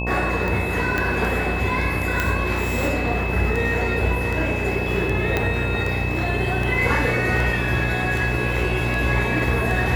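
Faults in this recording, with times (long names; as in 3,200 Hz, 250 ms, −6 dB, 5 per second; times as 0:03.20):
mains buzz 60 Hz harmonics 18 −26 dBFS
scratch tick
whistle 2,600 Hz −28 dBFS
0:00.98: click −9 dBFS
0:02.20: click
0:05.37: click −7 dBFS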